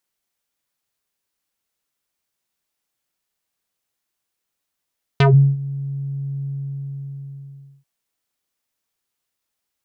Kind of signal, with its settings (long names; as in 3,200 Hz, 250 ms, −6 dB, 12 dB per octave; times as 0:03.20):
subtractive voice square C#3 12 dB per octave, low-pass 140 Hz, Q 2.3, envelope 5 octaves, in 0.14 s, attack 3.8 ms, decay 0.36 s, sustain −21 dB, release 1.39 s, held 1.25 s